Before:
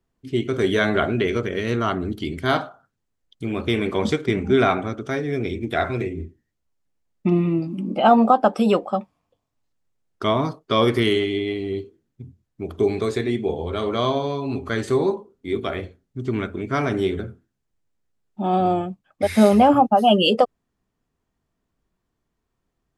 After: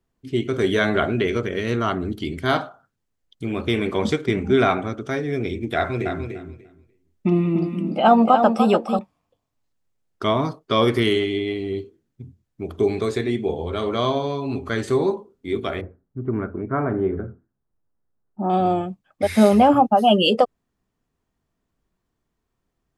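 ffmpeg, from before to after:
ffmpeg -i in.wav -filter_complex "[0:a]asettb=1/sr,asplit=3[link_01][link_02][link_03];[link_01]atrim=end=5.764[link_04];[link_02]atrim=start=5.76:end=8.99,asetpts=PTS-STARTPTS,afade=type=in:duration=0.004:curve=qsin,afade=type=out:start_time=3.226:duration=0.004:curve=qsin,aecho=1:1:295|590|885:0.447|0.0715|0.0114,atrim=end_sample=142443[link_05];[link_03]atrim=start=8.986[link_06];[link_04][link_05]acrossfade=duration=0.004:curve1=hsin:curve2=qsin[link_07];[link_07][link_06]acrossfade=duration=0.004:curve1=qsin:curve2=hsin,asettb=1/sr,asplit=3[link_08][link_09][link_10];[link_08]atrim=end=15.814[link_11];[link_09]atrim=start=15.81:end=18.5,asetpts=PTS-STARTPTS,afade=type=in:duration=0.004:curve=qsin,afade=type=out:start_time=2.686:duration=0.004:curve=qsin,lowpass=frequency=1500:width=0.5412,lowpass=frequency=1500:width=1.3066[link_12];[link_10]atrim=start=18.496[link_13];[link_11][link_12]acrossfade=duration=0.004:curve1=hsin:curve2=qsin[link_14];[link_14][link_13]acrossfade=duration=0.004:curve1=qsin:curve2=hsin" out.wav

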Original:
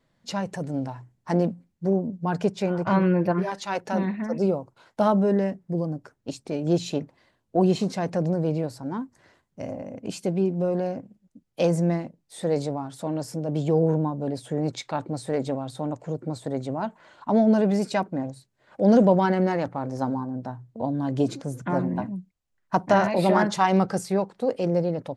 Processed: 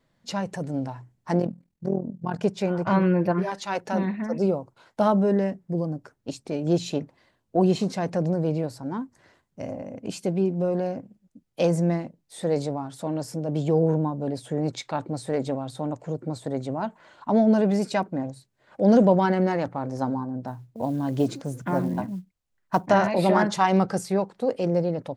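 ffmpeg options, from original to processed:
ffmpeg -i in.wav -filter_complex "[0:a]asplit=3[link_01][link_02][link_03];[link_01]afade=type=out:start_time=1.39:duration=0.02[link_04];[link_02]tremolo=f=41:d=0.824,afade=type=in:start_time=1.39:duration=0.02,afade=type=out:start_time=2.42:duration=0.02[link_05];[link_03]afade=type=in:start_time=2.42:duration=0.02[link_06];[link_04][link_05][link_06]amix=inputs=3:normalize=0,asettb=1/sr,asplit=3[link_07][link_08][link_09];[link_07]atrim=end=20.474[link_10];[link_08]atrim=start=20.47:end=22.86,asetpts=PTS-STARTPTS,afade=type=in:duration=0.004:curve=qsin,afade=type=out:start_time=2.386:duration=0.004:curve=qsin,acrusher=bits=8:mode=log:mix=0:aa=0.000001[link_11];[link_09]atrim=start=22.856[link_12];[link_10][link_11]acrossfade=duration=0.004:curve1=hsin:curve2=qsin[link_13];[link_13][link_12]acrossfade=duration=0.004:curve1=qsin:curve2=hsin" out.wav

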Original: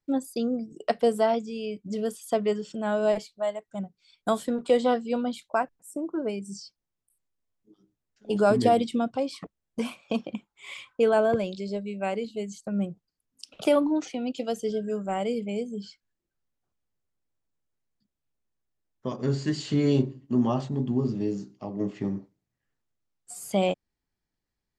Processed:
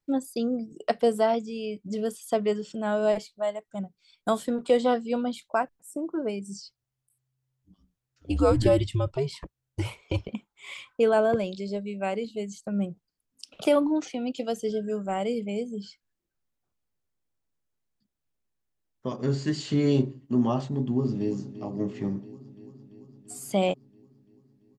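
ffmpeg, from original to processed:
ffmpeg -i in.wav -filter_complex "[0:a]asplit=3[link_01][link_02][link_03];[link_01]afade=type=out:start_time=6.61:duration=0.02[link_04];[link_02]afreqshift=-130,afade=type=in:start_time=6.61:duration=0.02,afade=type=out:start_time=10.28:duration=0.02[link_05];[link_03]afade=type=in:start_time=10.28:duration=0.02[link_06];[link_04][link_05][link_06]amix=inputs=3:normalize=0,asplit=2[link_07][link_08];[link_08]afade=type=in:start_time=20.7:duration=0.01,afade=type=out:start_time=21.36:duration=0.01,aecho=0:1:340|680|1020|1360|1700|2040|2380|2720|3060|3400|3740:0.199526|0.149645|0.112234|0.0841751|0.0631313|0.0473485|0.0355114|0.0266335|0.0199752|0.0149814|0.011236[link_09];[link_07][link_09]amix=inputs=2:normalize=0" out.wav

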